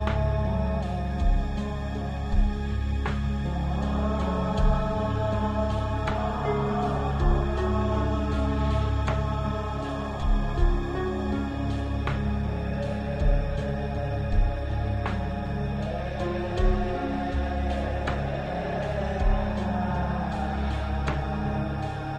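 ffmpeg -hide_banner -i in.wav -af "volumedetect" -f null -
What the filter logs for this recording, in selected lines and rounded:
mean_volume: -25.9 dB
max_volume: -10.0 dB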